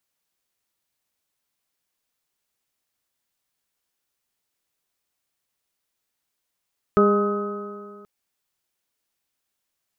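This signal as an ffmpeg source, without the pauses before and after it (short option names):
-f lavfi -i "aevalsrc='0.133*pow(10,-3*t/2.1)*sin(2*PI*203.22*t)+0.188*pow(10,-3*t/2.1)*sin(2*PI*407.78*t)+0.0562*pow(10,-3*t/2.1)*sin(2*PI*615*t)+0.0158*pow(10,-3*t/2.1)*sin(2*PI*826.17*t)+0.015*pow(10,-3*t/2.1)*sin(2*PI*1042.54*t)+0.126*pow(10,-3*t/2.1)*sin(2*PI*1265.31*t)+0.0141*pow(10,-3*t/2.1)*sin(2*PI*1495.63*t)':d=1.08:s=44100"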